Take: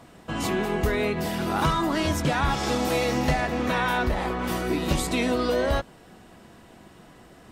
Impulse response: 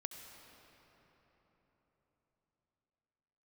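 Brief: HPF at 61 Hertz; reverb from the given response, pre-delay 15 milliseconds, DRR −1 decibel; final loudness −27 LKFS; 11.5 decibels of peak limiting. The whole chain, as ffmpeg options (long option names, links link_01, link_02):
-filter_complex "[0:a]highpass=61,alimiter=limit=-22dB:level=0:latency=1,asplit=2[link_01][link_02];[1:a]atrim=start_sample=2205,adelay=15[link_03];[link_02][link_03]afir=irnorm=-1:irlink=0,volume=3.5dB[link_04];[link_01][link_04]amix=inputs=2:normalize=0,volume=0.5dB"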